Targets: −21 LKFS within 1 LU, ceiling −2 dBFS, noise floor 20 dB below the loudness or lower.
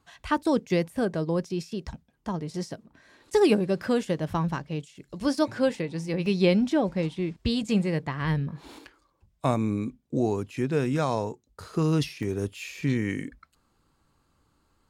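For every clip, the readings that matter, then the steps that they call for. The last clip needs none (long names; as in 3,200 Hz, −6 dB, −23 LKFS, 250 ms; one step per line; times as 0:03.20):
number of dropouts 2; longest dropout 1.5 ms; integrated loudness −27.5 LKFS; sample peak −10.0 dBFS; target loudness −21.0 LKFS
→ repair the gap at 0:06.26/0:12.23, 1.5 ms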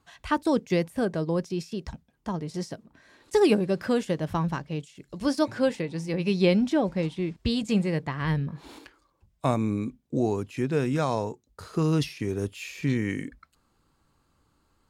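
number of dropouts 0; integrated loudness −27.5 LKFS; sample peak −10.0 dBFS; target loudness −21.0 LKFS
→ level +6.5 dB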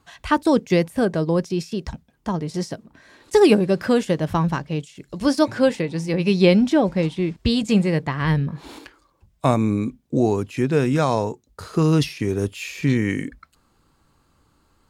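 integrated loudness −21.0 LKFS; sample peak −3.5 dBFS; background noise floor −63 dBFS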